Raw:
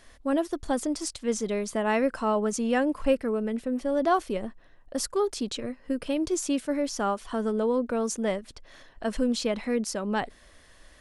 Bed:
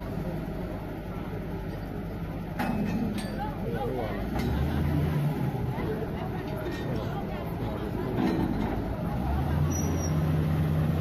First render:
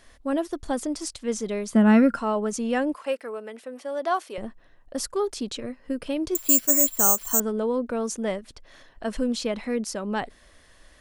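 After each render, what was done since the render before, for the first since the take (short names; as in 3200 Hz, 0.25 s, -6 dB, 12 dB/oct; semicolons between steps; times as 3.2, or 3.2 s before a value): 1.74–2.19 small resonant body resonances 210/1400 Hz, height 16 dB; 2.94–4.38 HPF 550 Hz; 6.35–7.4 careless resampling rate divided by 6×, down filtered, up zero stuff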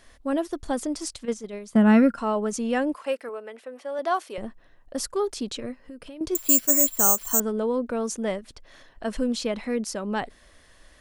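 1.25–2.18 gate -27 dBFS, range -9 dB; 3.29–3.99 tone controls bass -11 dB, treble -6 dB; 5.81–6.21 compressor 5:1, threshold -39 dBFS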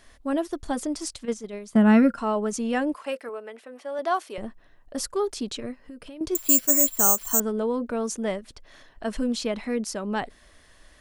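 notch 520 Hz, Q 15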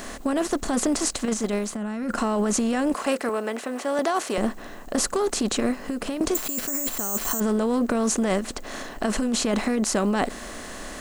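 per-bin compression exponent 0.6; negative-ratio compressor -23 dBFS, ratio -1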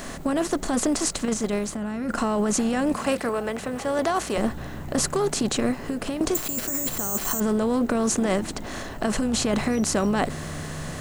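add bed -9.5 dB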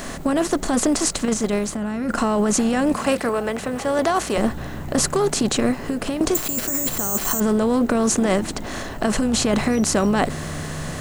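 gain +4 dB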